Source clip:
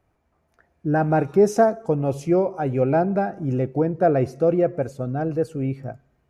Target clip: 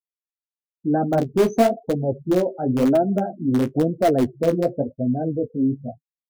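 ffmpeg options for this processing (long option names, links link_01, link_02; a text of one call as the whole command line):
ffmpeg -i in.wav -filter_complex "[0:a]afftfilt=real='re*gte(hypot(re,im),0.0708)':imag='im*gte(hypot(re,im),0.0708)':win_size=1024:overlap=0.75,equalizer=frequency=250:width_type=o:width=0.33:gain=12,equalizer=frequency=630:width_type=o:width=0.33:gain=4,equalizer=frequency=1000:width_type=o:width=0.33:gain=-9,equalizer=frequency=1600:width_type=o:width=0.33:gain=-9,equalizer=frequency=5000:width_type=o:width=0.33:gain=12,asplit=2[link_01][link_02];[link_02]aeval=exprs='(mod(2.82*val(0)+1,2)-1)/2.82':channel_layout=same,volume=-12dB[link_03];[link_01][link_03]amix=inputs=2:normalize=0,flanger=delay=8.8:depth=9.6:regen=-25:speed=0.98:shape=sinusoidal" out.wav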